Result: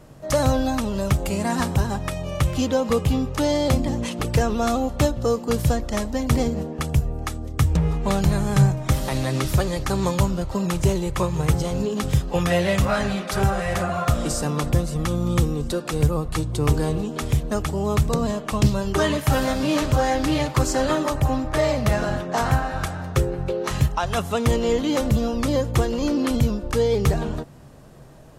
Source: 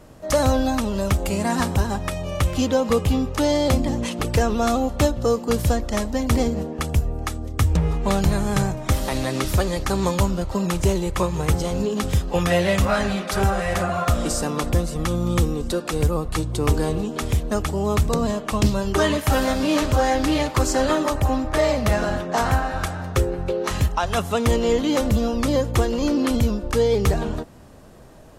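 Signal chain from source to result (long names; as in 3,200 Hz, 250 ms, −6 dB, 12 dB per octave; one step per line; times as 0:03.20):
parametric band 140 Hz +12.5 dB 0.2 octaves
level −1.5 dB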